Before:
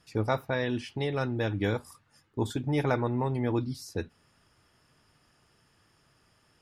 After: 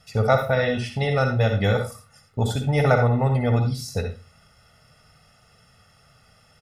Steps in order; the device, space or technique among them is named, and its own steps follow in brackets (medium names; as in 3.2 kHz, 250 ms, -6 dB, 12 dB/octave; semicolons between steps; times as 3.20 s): microphone above a desk (comb 1.5 ms, depth 90%; reverberation RT60 0.30 s, pre-delay 51 ms, DRR 5 dB); trim +5.5 dB